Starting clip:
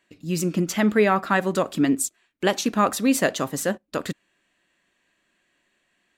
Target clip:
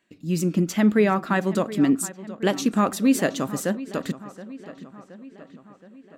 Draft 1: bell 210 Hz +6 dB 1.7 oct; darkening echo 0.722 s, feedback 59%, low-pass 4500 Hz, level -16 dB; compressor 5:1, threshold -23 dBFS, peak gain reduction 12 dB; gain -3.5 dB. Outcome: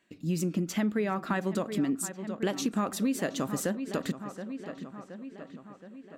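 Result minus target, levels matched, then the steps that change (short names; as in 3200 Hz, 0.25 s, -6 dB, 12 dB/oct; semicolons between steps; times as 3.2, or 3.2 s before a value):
compressor: peak gain reduction +12 dB
remove: compressor 5:1, threshold -23 dBFS, peak gain reduction 12 dB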